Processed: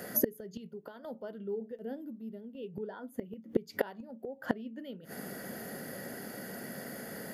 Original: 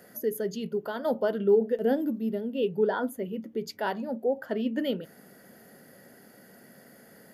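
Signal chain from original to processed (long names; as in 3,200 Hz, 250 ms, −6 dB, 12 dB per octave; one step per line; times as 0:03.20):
dynamic equaliser 180 Hz, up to +5 dB, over −40 dBFS, Q 1.3
gate with flip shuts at −25 dBFS, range −27 dB
level +10.5 dB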